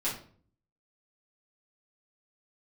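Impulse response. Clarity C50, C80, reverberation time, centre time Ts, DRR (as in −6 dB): 6.5 dB, 11.5 dB, 0.50 s, 30 ms, −9.0 dB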